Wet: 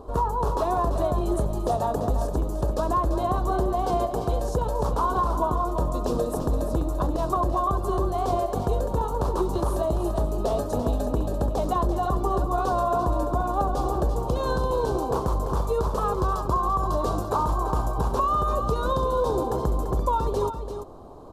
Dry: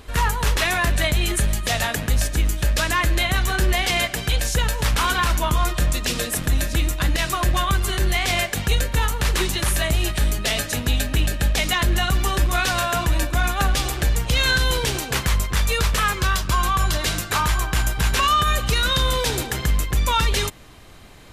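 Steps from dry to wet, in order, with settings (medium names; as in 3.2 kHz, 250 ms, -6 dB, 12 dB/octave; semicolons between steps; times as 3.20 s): FFT filter 160 Hz 0 dB, 410 Hz +10 dB, 1.1 kHz +7 dB, 2 kHz -29 dB, 4.2 kHz -14 dB; compression, threshold -18 dBFS, peak gain reduction 7.5 dB; delay 340 ms -8.5 dB; trim -2.5 dB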